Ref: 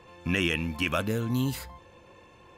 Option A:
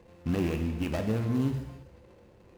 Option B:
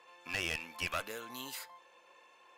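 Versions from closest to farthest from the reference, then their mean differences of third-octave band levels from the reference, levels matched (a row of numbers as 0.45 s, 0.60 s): A, B; 5.0 dB, 8.0 dB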